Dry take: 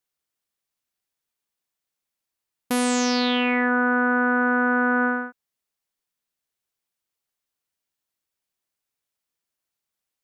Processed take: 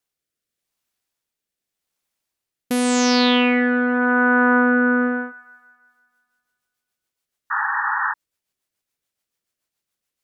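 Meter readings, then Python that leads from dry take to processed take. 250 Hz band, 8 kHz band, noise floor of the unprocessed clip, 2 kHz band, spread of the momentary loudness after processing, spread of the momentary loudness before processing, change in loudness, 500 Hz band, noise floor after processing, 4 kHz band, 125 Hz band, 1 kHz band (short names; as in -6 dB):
+5.0 dB, +3.0 dB, -85 dBFS, +3.5 dB, 11 LU, 5 LU, +3.0 dB, +4.5 dB, -85 dBFS, +5.0 dB, n/a, +3.5 dB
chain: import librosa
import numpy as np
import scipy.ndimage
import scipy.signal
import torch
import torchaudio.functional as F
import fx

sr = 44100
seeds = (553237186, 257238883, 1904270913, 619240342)

y = fx.rotary_switch(x, sr, hz=0.85, then_hz=7.0, switch_at_s=5.47)
y = fx.echo_wet_bandpass(y, sr, ms=167, feedback_pct=55, hz=1200.0, wet_db=-17.0)
y = fx.spec_paint(y, sr, seeds[0], shape='noise', start_s=7.5, length_s=0.64, low_hz=790.0, high_hz=1900.0, level_db=-28.0)
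y = y * librosa.db_to_amplitude(6.0)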